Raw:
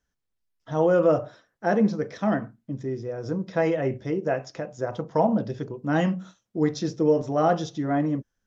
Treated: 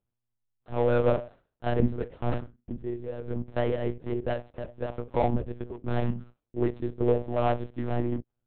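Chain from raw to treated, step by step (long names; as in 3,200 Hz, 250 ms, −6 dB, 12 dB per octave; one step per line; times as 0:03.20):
running median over 25 samples
one-pitch LPC vocoder at 8 kHz 120 Hz
level −3 dB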